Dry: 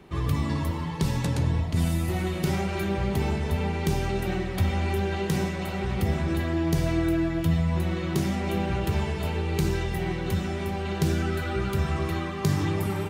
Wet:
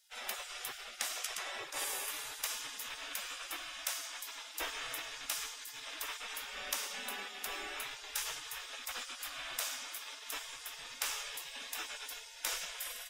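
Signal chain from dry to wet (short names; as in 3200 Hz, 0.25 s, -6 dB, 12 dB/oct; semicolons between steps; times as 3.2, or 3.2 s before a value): spectral gate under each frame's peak -30 dB weak; notch 4300 Hz, Q 9.4; gain +4 dB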